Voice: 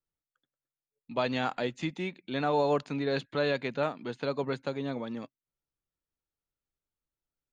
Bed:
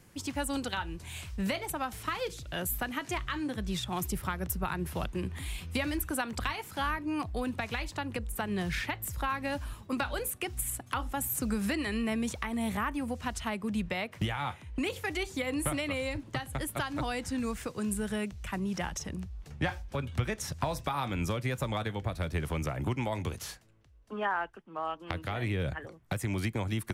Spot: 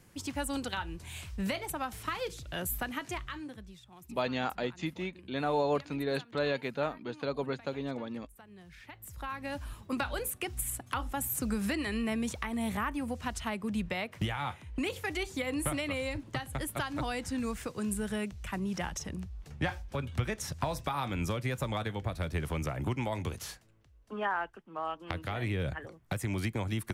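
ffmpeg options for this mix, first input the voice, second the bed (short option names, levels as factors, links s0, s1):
-filter_complex "[0:a]adelay=3000,volume=0.75[s0];[1:a]volume=7.94,afade=t=out:st=2.93:d=0.83:silence=0.112202,afade=t=in:st=8.78:d=1.11:silence=0.105925[s1];[s0][s1]amix=inputs=2:normalize=0"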